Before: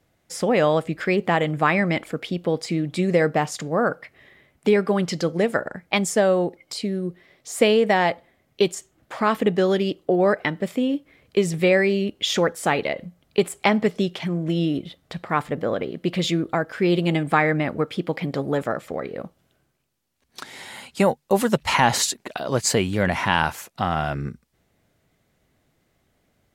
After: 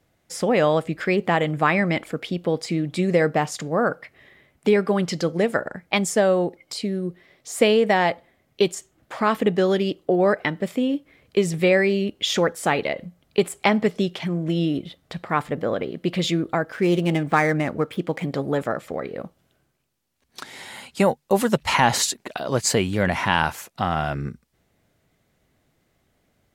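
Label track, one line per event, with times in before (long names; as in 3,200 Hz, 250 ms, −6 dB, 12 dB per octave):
16.730000	18.250000	running median over 9 samples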